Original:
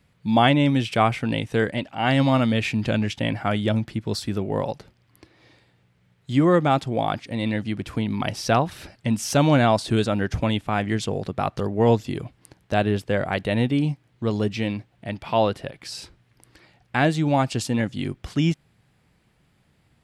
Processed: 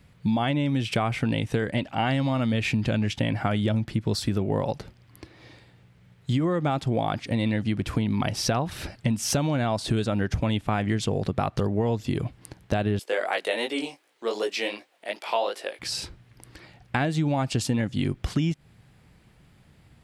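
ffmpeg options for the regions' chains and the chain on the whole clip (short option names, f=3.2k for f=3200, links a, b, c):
-filter_complex "[0:a]asettb=1/sr,asplit=3[a][b][c];[a]atrim=end=12.994[d];[b]atrim=start=12.99:end=15.79,asetpts=PTS-STARTPTS,afade=t=in:d=0.004:c=qsin,afade=t=out:st=2.796:d=0.004:c=qsin,highpass=f=400:w=0.5412,highpass=f=400:w=1.3066,highshelf=f=4.6k:g=8,flanger=delay=16.5:depth=5.7:speed=2.7[e];[c]atrim=start=15.786[f];[d][e]acrossfade=d=0.004:c1=hsin:c2=qsin[g];[g][f]acrossfade=d=0.004:c1=qsin:c2=hsin,lowshelf=f=150:g=5,alimiter=limit=-12dB:level=0:latency=1:release=133,acompressor=threshold=-26dB:ratio=6,volume=4.5dB"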